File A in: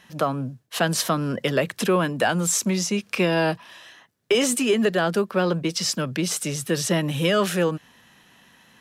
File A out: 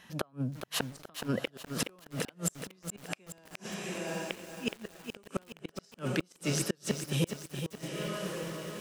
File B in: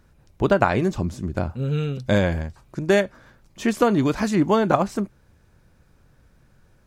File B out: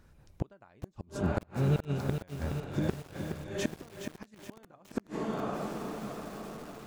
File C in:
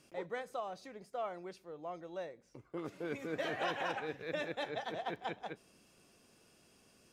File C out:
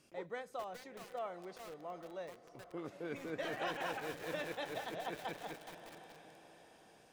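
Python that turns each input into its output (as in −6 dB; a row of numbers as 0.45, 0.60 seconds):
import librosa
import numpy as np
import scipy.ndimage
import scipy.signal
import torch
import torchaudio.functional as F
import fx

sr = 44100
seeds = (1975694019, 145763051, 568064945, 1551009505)

y = fx.echo_diffused(x, sr, ms=785, feedback_pct=46, wet_db=-13.0)
y = fx.gate_flip(y, sr, shuts_db=-14.0, range_db=-36)
y = fx.echo_crushed(y, sr, ms=420, feedback_pct=55, bits=7, wet_db=-7)
y = y * 10.0 ** (-3.0 / 20.0)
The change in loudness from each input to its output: −13.5, −13.0, −2.5 LU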